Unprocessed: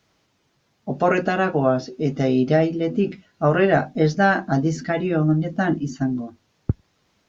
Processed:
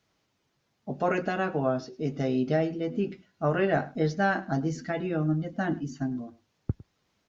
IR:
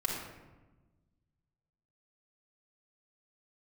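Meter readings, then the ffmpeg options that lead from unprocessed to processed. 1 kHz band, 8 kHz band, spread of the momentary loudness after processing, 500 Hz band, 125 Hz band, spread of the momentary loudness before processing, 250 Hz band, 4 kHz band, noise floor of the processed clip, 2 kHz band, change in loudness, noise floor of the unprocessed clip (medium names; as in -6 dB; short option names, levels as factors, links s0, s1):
-8.0 dB, no reading, 11 LU, -8.0 dB, -8.0 dB, 11 LU, -8.0 dB, -8.0 dB, -75 dBFS, -8.0 dB, -8.0 dB, -67 dBFS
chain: -filter_complex "[0:a]asplit=2[s0][s1];[s1]adelay=105,volume=0.1,highshelf=f=4000:g=-2.36[s2];[s0][s2]amix=inputs=2:normalize=0,volume=0.398"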